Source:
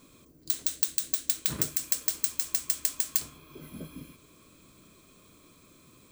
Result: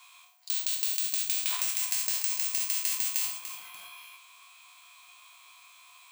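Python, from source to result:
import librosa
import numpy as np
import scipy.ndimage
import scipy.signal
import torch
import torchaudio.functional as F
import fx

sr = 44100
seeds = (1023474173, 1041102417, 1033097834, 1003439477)

p1 = fx.spec_trails(x, sr, decay_s=0.46)
p2 = fx.over_compress(p1, sr, threshold_db=-30.0, ratio=-1.0)
p3 = p1 + F.gain(torch.from_numpy(p2), 2.5).numpy()
p4 = scipy.signal.sosfilt(scipy.signal.cheby1(6, 9, 700.0, 'highpass', fs=sr, output='sos'), p3)
y = fx.echo_crushed(p4, sr, ms=293, feedback_pct=35, bits=7, wet_db=-10)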